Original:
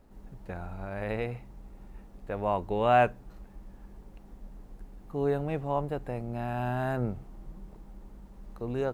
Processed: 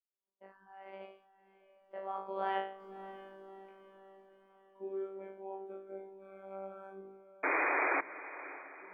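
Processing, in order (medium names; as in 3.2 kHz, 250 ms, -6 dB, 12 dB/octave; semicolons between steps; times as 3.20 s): Doppler pass-by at 3.11 s, 54 m/s, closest 12 m; in parallel at +2.5 dB: compression, threshold -51 dBFS, peak gain reduction 21 dB; on the sum: resonant low shelf 200 Hz -12.5 dB, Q 1.5; expander -60 dBFS; three-band isolator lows -21 dB, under 260 Hz, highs -17 dB, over 2.5 kHz; on a send: flutter echo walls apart 3.2 m, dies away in 0.47 s; on the sum: spectral noise reduction 16 dB; robot voice 193 Hz; painted sound noise, 7.43–8.01 s, 270–2500 Hz -31 dBFS; echo that smears into a reverb 610 ms, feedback 49%, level -15 dB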